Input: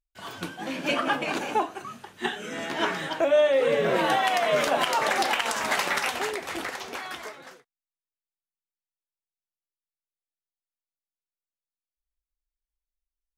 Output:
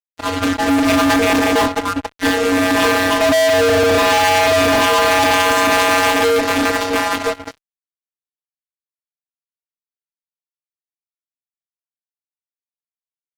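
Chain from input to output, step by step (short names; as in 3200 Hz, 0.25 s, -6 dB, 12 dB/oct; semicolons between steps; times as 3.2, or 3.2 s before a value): vocoder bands 16, square 92.6 Hz; fuzz box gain 44 dB, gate -46 dBFS; upward expander 1.5:1, over -26 dBFS; gain +1 dB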